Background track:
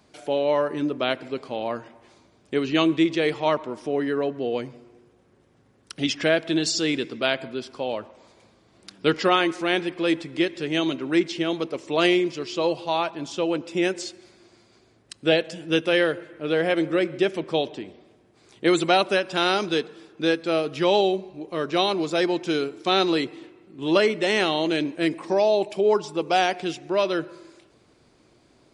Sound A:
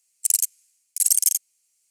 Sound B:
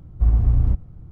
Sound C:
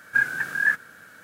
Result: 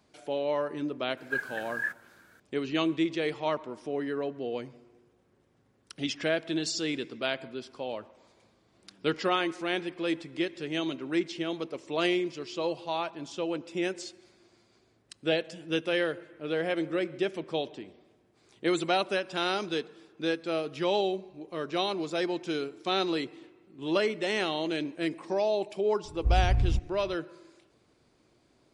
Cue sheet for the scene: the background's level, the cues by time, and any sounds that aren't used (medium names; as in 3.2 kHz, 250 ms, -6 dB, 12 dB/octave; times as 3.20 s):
background track -7.5 dB
1.17 s: add C -11 dB
26.04 s: add B -8 dB
not used: A